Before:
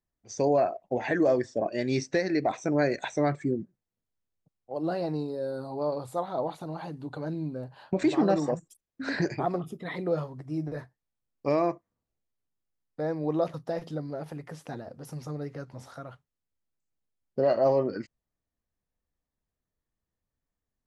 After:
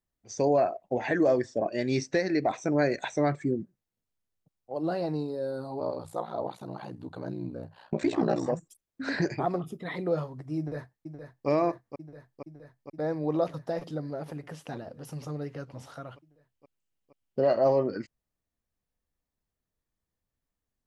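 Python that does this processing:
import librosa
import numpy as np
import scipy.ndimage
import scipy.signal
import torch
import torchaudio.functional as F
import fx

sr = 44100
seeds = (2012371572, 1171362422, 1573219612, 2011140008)

y = fx.ring_mod(x, sr, carrier_hz=30.0, at=(5.79, 8.46))
y = fx.echo_throw(y, sr, start_s=10.58, length_s=0.9, ms=470, feedback_pct=80, wet_db=-8.5)
y = fx.peak_eq(y, sr, hz=2900.0, db=7.5, octaves=0.32, at=(14.42, 17.46))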